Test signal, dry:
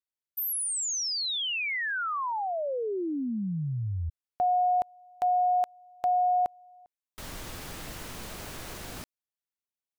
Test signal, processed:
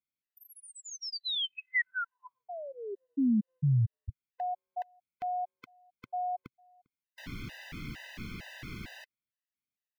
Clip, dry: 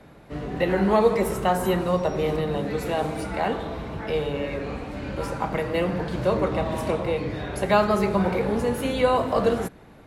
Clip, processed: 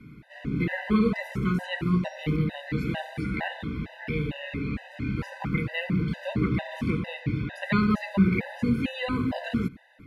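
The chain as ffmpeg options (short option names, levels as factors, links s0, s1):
-filter_complex "[0:a]equalizer=f=125:t=o:w=1:g=7,equalizer=f=250:t=o:w=1:g=8,equalizer=f=500:t=o:w=1:g=-10,equalizer=f=1000:t=o:w=1:g=-7,equalizer=f=2000:t=o:w=1:g=9,equalizer=f=8000:t=o:w=1:g=-8,acrossover=split=6500[s0][s1];[s1]acompressor=threshold=0.00141:ratio=4:attack=1:release=60[s2];[s0][s2]amix=inputs=2:normalize=0,afftfilt=real='re*gt(sin(2*PI*2.2*pts/sr)*(1-2*mod(floor(b*sr/1024/510),2)),0)':imag='im*gt(sin(2*PI*2.2*pts/sr)*(1-2*mod(floor(b*sr/1024/510),2)),0)':win_size=1024:overlap=0.75,volume=0.841"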